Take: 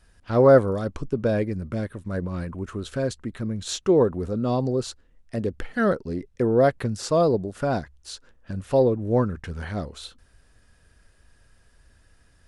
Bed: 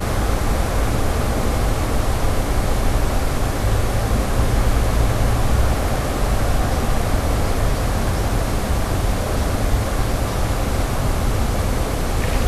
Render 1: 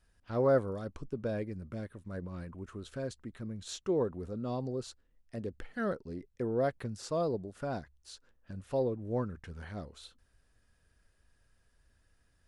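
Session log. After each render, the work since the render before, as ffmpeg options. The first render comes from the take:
ffmpeg -i in.wav -af "volume=-12dB" out.wav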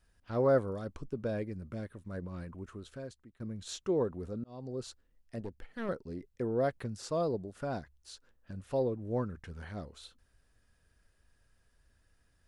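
ffmpeg -i in.wav -filter_complex "[0:a]asettb=1/sr,asplit=3[link_01][link_02][link_03];[link_01]atrim=end=5.404[link_04];[link_02]atrim=start=5.4:end=5.89,asetpts=PTS-STARTPTS,afade=type=in:duration=0.004:curve=qsin,afade=type=out:start_time=0.486:duration=0.004:curve=qsin,aeval=exprs='(tanh(35.5*val(0)+0.7)-tanh(0.7))/35.5':channel_layout=same[link_05];[link_03]atrim=start=5.886[link_06];[link_04][link_05]acrossfade=duration=0.004:curve1=hsin:curve2=qsin[link_07];[link_07][link_06]acrossfade=duration=0.004:curve1=qsin:curve2=hsin,asplit=3[link_08][link_09][link_10];[link_08]atrim=end=3.4,asetpts=PTS-STARTPTS,afade=type=out:start_time=2.59:duration=0.81:silence=0.105925[link_11];[link_09]atrim=start=3.4:end=4.44,asetpts=PTS-STARTPTS,afade=type=in:duration=0.004:curve=hsin:silence=0.105925,afade=type=out:start_time=1.036:duration=0.004:curve=hsin[link_12];[link_10]atrim=start=4.44,asetpts=PTS-STARTPTS,afade=type=in:duration=0.41[link_13];[link_11][link_12][link_13]concat=n=3:v=0:a=1" out.wav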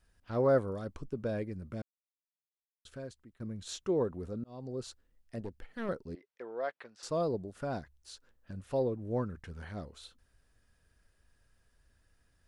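ffmpeg -i in.wav -filter_complex "[0:a]asettb=1/sr,asplit=3[link_01][link_02][link_03];[link_01]atrim=end=6.154[link_04];[link_02]atrim=start=6.15:end=7.03,asetpts=PTS-STARTPTS,afade=type=in:duration=0.004:curve=qsin,afade=type=out:start_time=0.876:duration=0.004:curve=qsin,highpass=700,lowpass=3600[link_05];[link_03]atrim=start=7.026[link_06];[link_04][link_05]acrossfade=duration=0.004:curve1=hsin:curve2=qsin[link_07];[link_07][link_06]acrossfade=duration=0.004:curve1=qsin:curve2=hsin,asplit=3[link_08][link_09][link_10];[link_08]atrim=end=1.82,asetpts=PTS-STARTPTS,afade=type=out:start_time=1.816:duration=0.004:curve=hsin[link_11];[link_09]atrim=start=1.82:end=2.85,asetpts=PTS-STARTPTS,volume=0[link_12];[link_10]atrim=start=2.85,asetpts=PTS-STARTPTS,afade=type=in:duration=0.004:curve=hsin[link_13];[link_11][link_12][link_13]concat=n=3:v=0:a=1" out.wav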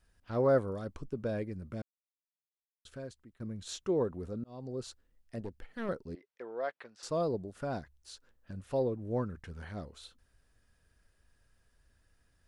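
ffmpeg -i in.wav -af anull out.wav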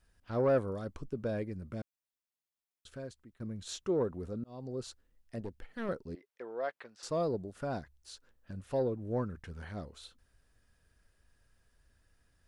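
ffmpeg -i in.wav -af "asoftclip=type=tanh:threshold=-19dB" out.wav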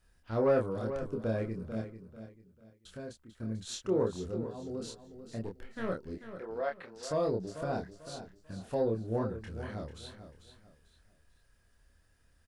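ffmpeg -i in.wav -filter_complex "[0:a]asplit=2[link_01][link_02];[link_02]adelay=27,volume=-3dB[link_03];[link_01][link_03]amix=inputs=2:normalize=0,aecho=1:1:443|886|1329:0.282|0.0846|0.0254" out.wav

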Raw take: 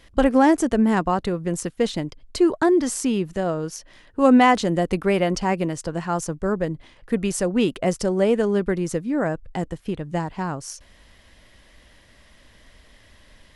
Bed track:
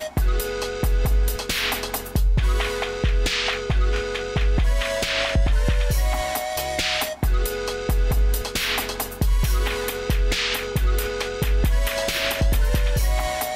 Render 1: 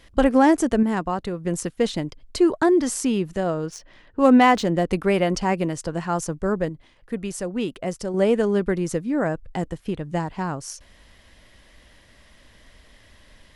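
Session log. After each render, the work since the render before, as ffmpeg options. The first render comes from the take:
ffmpeg -i in.wav -filter_complex "[0:a]asettb=1/sr,asplit=3[link_01][link_02][link_03];[link_01]atrim=end=3.664[link_04];[link_02]atrim=start=3.66:end=4.9,asetpts=PTS-STARTPTS,afade=type=in:duration=0.004:curve=qsin,afade=type=out:start_time=1.236:duration=0.004:curve=qsin,adynamicsmooth=sensitivity=7:basefreq=4600[link_05];[link_03]atrim=start=4.896[link_06];[link_04][link_05]acrossfade=duration=0.004:curve1=hsin:curve2=qsin[link_07];[link_07][link_06]acrossfade=duration=0.004:curve1=qsin:curve2=hsin,asplit=5[link_08][link_09][link_10][link_11][link_12];[link_08]atrim=end=0.832[link_13];[link_09]atrim=start=0.828:end=1.452,asetpts=PTS-STARTPTS,volume=-4dB[link_14];[link_10]atrim=start=1.448:end=6.692[link_15];[link_11]atrim=start=6.688:end=8.142,asetpts=PTS-STARTPTS,volume=-6dB[link_16];[link_12]atrim=start=8.138[link_17];[link_13][link_14]acrossfade=duration=0.004:curve1=hsin:curve2=hsin[link_18];[link_18][link_15]acrossfade=duration=0.004:curve1=hsin:curve2=hsin[link_19];[link_19][link_16]acrossfade=duration=0.004:curve1=hsin:curve2=hsin[link_20];[link_20][link_17]acrossfade=duration=0.004:curve1=hsin:curve2=hsin" out.wav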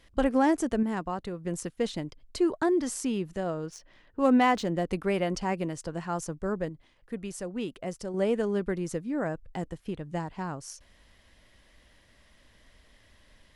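ffmpeg -i in.wav -af "volume=-7.5dB" out.wav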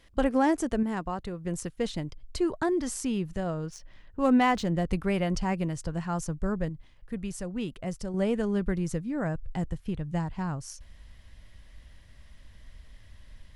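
ffmpeg -i in.wav -af "asubboost=boost=4:cutoff=160" out.wav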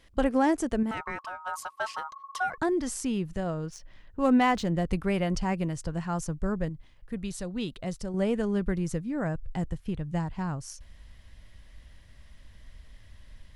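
ffmpeg -i in.wav -filter_complex "[0:a]asettb=1/sr,asplit=3[link_01][link_02][link_03];[link_01]atrim=end=0.914[link_04];[link_02]atrim=start=0.91:end=2.58,asetpts=PTS-STARTPTS,afade=type=in:duration=0.004:curve=qsin,afade=type=out:start_time=1.666:duration=0.004:curve=qsin,aeval=exprs='val(0)*sin(2*PI*1100*n/s)':channel_layout=same[link_05];[link_03]atrim=start=2.576[link_06];[link_04][link_05]acrossfade=duration=0.004:curve1=hsin:curve2=qsin[link_07];[link_07][link_06]acrossfade=duration=0.004:curve1=qsin:curve2=hsin,asettb=1/sr,asplit=3[link_08][link_09][link_10];[link_08]atrim=end=7.244[link_11];[link_09]atrim=start=7.24:end=7.99,asetpts=PTS-STARTPTS,afade=type=in:duration=0.004:curve=qsin,afade=type=out:start_time=0.746:duration=0.004:curve=qsin,equalizer=frequency=3900:width=3.2:gain=11.5[link_12];[link_10]atrim=start=7.986[link_13];[link_11][link_12]acrossfade=duration=0.004:curve1=hsin:curve2=qsin[link_14];[link_14][link_13]acrossfade=duration=0.004:curve1=qsin:curve2=hsin" out.wav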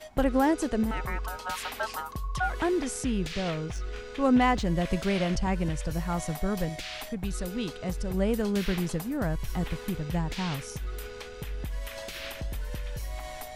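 ffmpeg -i in.wav -i bed.wav -filter_complex "[1:a]volume=-15dB[link_01];[0:a][link_01]amix=inputs=2:normalize=0" out.wav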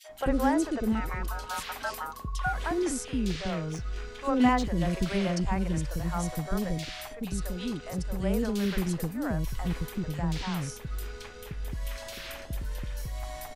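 ffmpeg -i in.wav -filter_complex "[0:a]acrossover=split=490|2600[link_01][link_02][link_03];[link_02]adelay=40[link_04];[link_01]adelay=90[link_05];[link_05][link_04][link_03]amix=inputs=3:normalize=0" out.wav

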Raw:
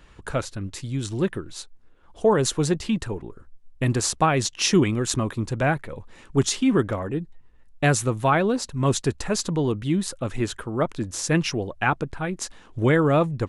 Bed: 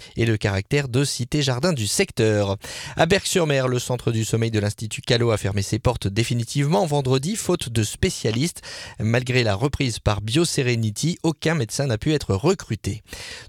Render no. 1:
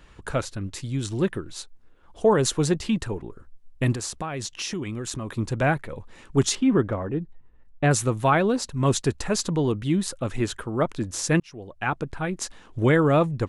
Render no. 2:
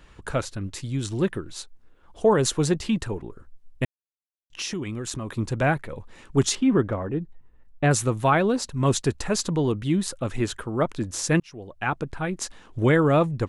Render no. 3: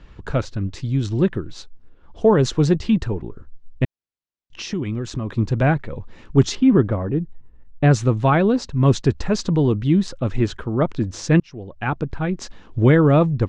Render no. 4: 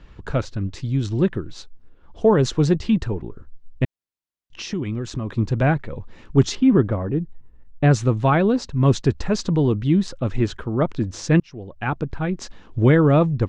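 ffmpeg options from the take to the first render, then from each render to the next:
ffmpeg -i in.wav -filter_complex "[0:a]asettb=1/sr,asplit=3[link_01][link_02][link_03];[link_01]atrim=end=3.944[link_04];[link_02]atrim=start=3.94:end=5.38,asetpts=PTS-STARTPTS,afade=type=in:duration=0.004:curve=qsin,afade=type=out:start_time=1.436:duration=0.004:curve=qsin,acompressor=threshold=-29dB:ratio=4:attack=3.2:release=140:knee=1:detection=peak[link_05];[link_03]atrim=start=5.376[link_06];[link_04][link_05]acrossfade=duration=0.004:curve1=hsin:curve2=qsin[link_07];[link_07][link_06]acrossfade=duration=0.004:curve1=qsin:curve2=hsin,asettb=1/sr,asplit=3[link_08][link_09][link_10];[link_08]atrim=end=6.554[link_11];[link_09]atrim=start=6.55:end=7.91,asetpts=PTS-STARTPTS,afade=type=in:duration=0.004:curve=qsin,afade=type=out:start_time=1.356:duration=0.004:curve=qsin,lowpass=frequency=1600:poles=1[link_12];[link_10]atrim=start=7.906[link_13];[link_11][link_12]acrossfade=duration=0.004:curve1=hsin:curve2=qsin[link_14];[link_14][link_13]acrossfade=duration=0.004:curve1=qsin:curve2=hsin,asplit=2[link_15][link_16];[link_15]atrim=end=11.4,asetpts=PTS-STARTPTS,afade=type=out:start_time=11.396:duration=0.004:curve=hsin[link_17];[link_16]atrim=start=11.4,asetpts=PTS-STARTPTS,afade=type=in:duration=0.78[link_18];[link_17][link_18]concat=n=2:v=0:a=1" out.wav
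ffmpeg -i in.wav -filter_complex "[0:a]asplit=3[link_01][link_02][link_03];[link_01]atrim=end=3.85,asetpts=PTS-STARTPTS,afade=type=out:start_time=3.846:duration=0.004:curve=hsin[link_04];[link_02]atrim=start=3.85:end=4.5,asetpts=PTS-STARTPTS,volume=0[link_05];[link_03]atrim=start=4.5,asetpts=PTS-STARTPTS,afade=type=in:duration=0.004:curve=hsin[link_06];[link_04][link_05][link_06]concat=n=3:v=0:a=1" out.wav
ffmpeg -i in.wav -af "lowpass=frequency=6000:width=0.5412,lowpass=frequency=6000:width=1.3066,lowshelf=frequency=390:gain=8.5" out.wav
ffmpeg -i in.wav -af "volume=-1dB" out.wav

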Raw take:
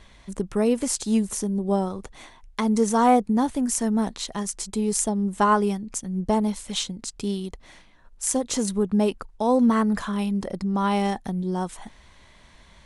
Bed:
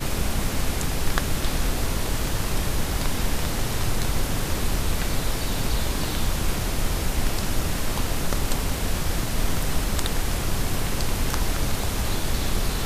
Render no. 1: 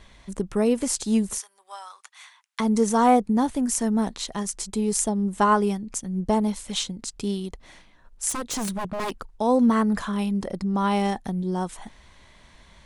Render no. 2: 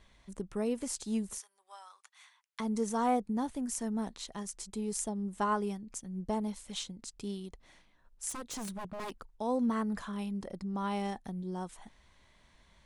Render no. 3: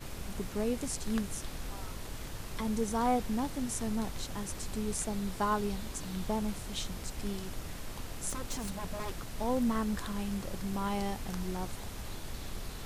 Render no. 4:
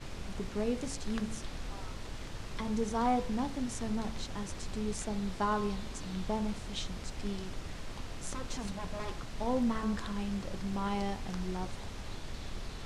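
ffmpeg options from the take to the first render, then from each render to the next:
ffmpeg -i in.wav -filter_complex "[0:a]asettb=1/sr,asplit=3[link_01][link_02][link_03];[link_01]atrim=end=1.384[link_04];[link_02]atrim=start=1.38:end=2.6,asetpts=PTS-STARTPTS,afade=type=in:duration=0.004:curve=qsin,afade=type=out:start_time=1.216:duration=0.004:curve=qsin,highpass=frequency=1100:width=0.5412,highpass=frequency=1100:width=1.3066[link_05];[link_03]atrim=start=2.596[link_06];[link_04][link_05]acrossfade=duration=0.004:curve1=hsin:curve2=qsin[link_07];[link_07][link_06]acrossfade=duration=0.004:curve1=qsin:curve2=hsin,asplit=3[link_08][link_09][link_10];[link_08]afade=type=out:start_time=8.29:duration=0.02[link_11];[link_09]aeval=exprs='0.0708*(abs(mod(val(0)/0.0708+3,4)-2)-1)':channel_layout=same,afade=type=in:start_time=8.29:duration=0.02,afade=type=out:start_time=9.28:duration=0.02[link_12];[link_10]afade=type=in:start_time=9.28:duration=0.02[link_13];[link_11][link_12][link_13]amix=inputs=3:normalize=0" out.wav
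ffmpeg -i in.wav -af "volume=-11.5dB" out.wav
ffmpeg -i in.wav -i bed.wav -filter_complex "[1:a]volume=-16.5dB[link_01];[0:a][link_01]amix=inputs=2:normalize=0" out.wav
ffmpeg -i in.wav -af "lowpass=6200,bandreject=frequency=55.31:width_type=h:width=4,bandreject=frequency=110.62:width_type=h:width=4,bandreject=frequency=165.93:width_type=h:width=4,bandreject=frequency=221.24:width_type=h:width=4,bandreject=frequency=276.55:width_type=h:width=4,bandreject=frequency=331.86:width_type=h:width=4,bandreject=frequency=387.17:width_type=h:width=4,bandreject=frequency=442.48:width_type=h:width=4,bandreject=frequency=497.79:width_type=h:width=4,bandreject=frequency=553.1:width_type=h:width=4,bandreject=frequency=608.41:width_type=h:width=4,bandreject=frequency=663.72:width_type=h:width=4,bandreject=frequency=719.03:width_type=h:width=4,bandreject=frequency=774.34:width_type=h:width=4,bandreject=frequency=829.65:width_type=h:width=4,bandreject=frequency=884.96:width_type=h:width=4,bandreject=frequency=940.27:width_type=h:width=4,bandreject=frequency=995.58:width_type=h:width=4,bandreject=frequency=1050.89:width_type=h:width=4,bandreject=frequency=1106.2:width_type=h:width=4,bandreject=frequency=1161.51:width_type=h:width=4,bandreject=frequency=1216.82:width_type=h:width=4,bandreject=frequency=1272.13:width_type=h:width=4,bandreject=frequency=1327.44:width_type=h:width=4,bandreject=frequency=1382.75:width_type=h:width=4,bandreject=frequency=1438.06:width_type=h:width=4,bandreject=frequency=1493.37:width_type=h:width=4,bandreject=frequency=1548.68:width_type=h:width=4,bandreject=frequency=1603.99:width_type=h:width=4,bandreject=frequency=1659.3:width_type=h:width=4,bandreject=frequency=1714.61:width_type=h:width=4" out.wav

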